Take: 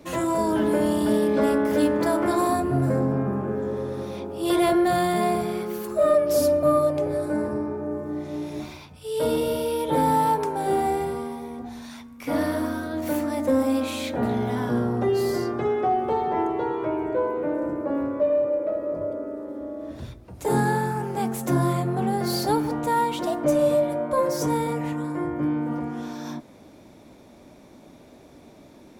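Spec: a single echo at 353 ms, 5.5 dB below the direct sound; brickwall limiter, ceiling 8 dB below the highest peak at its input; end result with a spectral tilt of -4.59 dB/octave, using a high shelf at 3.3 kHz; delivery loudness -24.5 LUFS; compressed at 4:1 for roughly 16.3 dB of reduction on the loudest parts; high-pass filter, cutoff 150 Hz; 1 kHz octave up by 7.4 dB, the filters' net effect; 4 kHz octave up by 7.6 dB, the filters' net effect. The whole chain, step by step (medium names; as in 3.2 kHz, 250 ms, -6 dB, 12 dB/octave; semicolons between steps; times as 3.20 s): high-pass 150 Hz; peaking EQ 1 kHz +8.5 dB; treble shelf 3.3 kHz +6 dB; peaking EQ 4 kHz +4.5 dB; compression 4:1, threshold -32 dBFS; peak limiter -27.5 dBFS; delay 353 ms -5.5 dB; trim +10 dB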